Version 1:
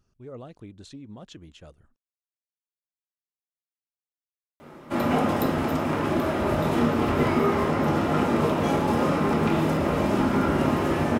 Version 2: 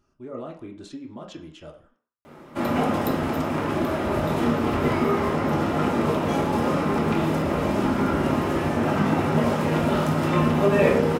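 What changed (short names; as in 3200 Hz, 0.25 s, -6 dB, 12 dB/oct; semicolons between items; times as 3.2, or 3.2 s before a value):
speech: send on; background: entry -2.35 s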